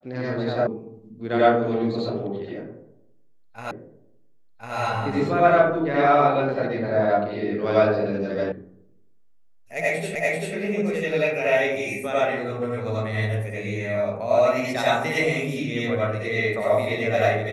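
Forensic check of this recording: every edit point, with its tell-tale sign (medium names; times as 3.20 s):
0.67 s: sound stops dead
3.71 s: repeat of the last 1.05 s
8.52 s: sound stops dead
10.15 s: repeat of the last 0.39 s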